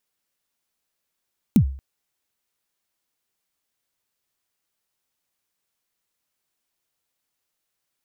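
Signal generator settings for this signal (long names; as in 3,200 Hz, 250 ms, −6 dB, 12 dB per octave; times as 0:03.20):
synth kick length 0.23 s, from 260 Hz, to 67 Hz, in 86 ms, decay 0.46 s, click on, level −8 dB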